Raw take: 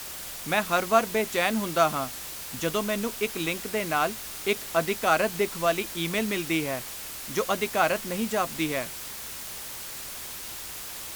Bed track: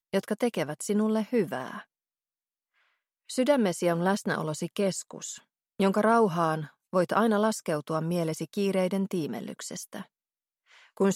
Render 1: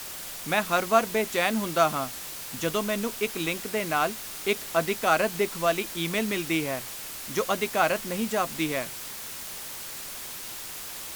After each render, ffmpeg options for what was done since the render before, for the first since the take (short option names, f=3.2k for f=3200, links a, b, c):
-af "bandreject=f=60:t=h:w=4,bandreject=f=120:t=h:w=4"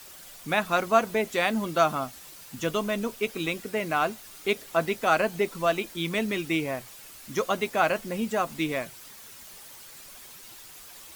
-af "afftdn=nr=10:nf=-38"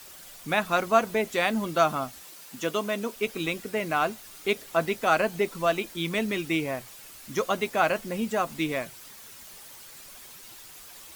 -filter_complex "[0:a]asettb=1/sr,asplit=3[a][b][c];[a]atrim=end=2.234[d];[b]atrim=start=2.23:end=3.16,asetpts=PTS-STARTPTS,afade=t=in:d=0.004:c=qsin,afade=t=out:st=0.926:d=0.004:c=qsin,highpass=210[e];[c]atrim=start=3.156[f];[d][e]acrossfade=d=0.004:c1=hsin:c2=qsin[g];[g][f]acrossfade=d=0.004:c1=qsin:c2=hsin"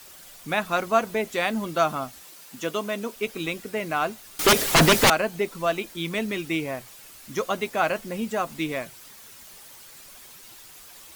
-filter_complex "[0:a]asettb=1/sr,asplit=3[a][b][c];[a]atrim=end=4.394[d];[b]atrim=start=4.39:end=5.1,asetpts=PTS-STARTPTS,afade=t=in:d=0.004:c=qsin,afade=t=out:st=0.706:d=0.004:c=qsin,aeval=exprs='0.266*sin(PI/2*6.31*val(0)/0.266)':c=same[e];[c]atrim=start=5.096[f];[d][e]acrossfade=d=0.004:c1=hsin:c2=qsin[g];[g][f]acrossfade=d=0.004:c1=qsin:c2=hsin"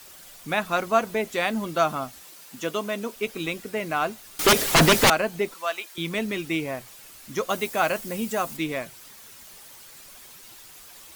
-filter_complex "[0:a]asettb=1/sr,asplit=3[a][b][c];[a]atrim=end=5.544[d];[b]atrim=start=5.54:end=5.98,asetpts=PTS-STARTPTS,afade=t=in:d=0.004:c=qsin,afade=t=out:st=0.436:d=0.004:c=qsin,highpass=820[e];[c]atrim=start=5.976[f];[d][e]acrossfade=d=0.004:c1=hsin:c2=qsin[g];[g][f]acrossfade=d=0.004:c1=qsin:c2=hsin,asettb=1/sr,asplit=3[h][i][j];[h]atrim=end=7.494[k];[i]atrim=start=7.49:end=8.57,asetpts=PTS-STARTPTS,afade=t=in:d=0.004:c=qsin,afade=t=out:st=1.076:d=0.004:c=qsin,highshelf=f=6.3k:g=9.5[l];[j]atrim=start=8.566[m];[k][l]acrossfade=d=0.004:c1=hsin:c2=qsin[n];[n][m]acrossfade=d=0.004:c1=qsin:c2=hsin"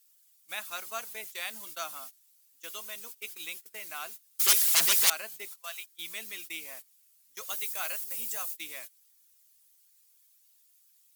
-af "agate=range=-20dB:threshold=-33dB:ratio=16:detection=peak,aderivative"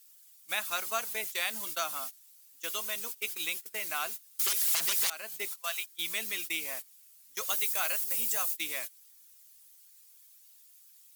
-filter_complex "[0:a]asplit=2[a][b];[b]acompressor=threshold=-35dB:ratio=6,volume=0.5dB[c];[a][c]amix=inputs=2:normalize=0,alimiter=limit=-16dB:level=0:latency=1:release=312"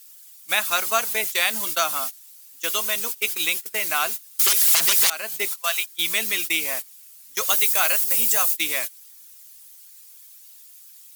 -af "volume=11dB"